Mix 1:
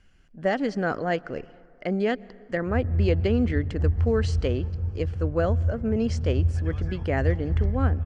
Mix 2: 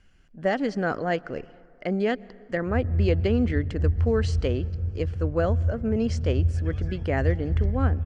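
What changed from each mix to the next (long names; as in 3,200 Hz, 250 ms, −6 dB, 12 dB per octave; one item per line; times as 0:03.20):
background: add parametric band 1,000 Hz −13 dB 0.62 octaves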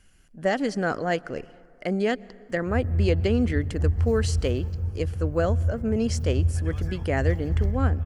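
background: add parametric band 1,000 Hz +13 dB 0.62 octaves
master: remove high-frequency loss of the air 120 metres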